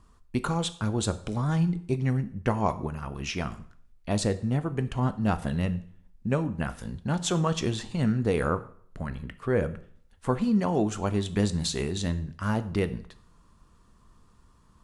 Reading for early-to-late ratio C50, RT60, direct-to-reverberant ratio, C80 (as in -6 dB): 16.5 dB, 0.55 s, 11.5 dB, 19.0 dB